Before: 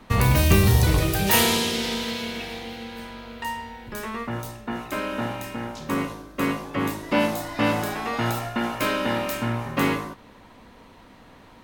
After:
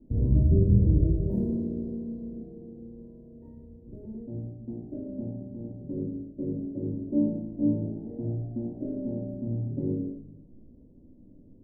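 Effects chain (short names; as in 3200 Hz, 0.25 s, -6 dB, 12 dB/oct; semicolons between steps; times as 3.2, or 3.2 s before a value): inverse Chebyshev low-pass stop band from 1100 Hz, stop band 50 dB; reverb RT60 0.60 s, pre-delay 3 ms, DRR -0.5 dB; gain -7 dB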